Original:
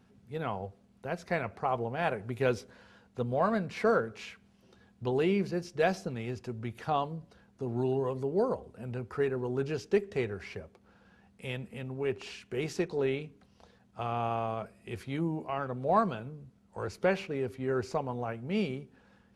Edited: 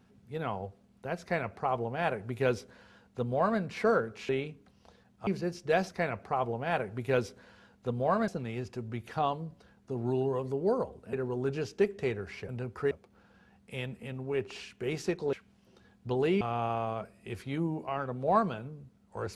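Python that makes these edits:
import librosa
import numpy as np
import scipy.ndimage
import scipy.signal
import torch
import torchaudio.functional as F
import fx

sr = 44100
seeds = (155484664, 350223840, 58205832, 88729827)

y = fx.edit(x, sr, fx.duplicate(start_s=1.21, length_s=2.39, to_s=5.99),
    fx.swap(start_s=4.29, length_s=1.08, other_s=13.04, other_length_s=0.98),
    fx.move(start_s=8.84, length_s=0.42, to_s=10.62), tone=tone)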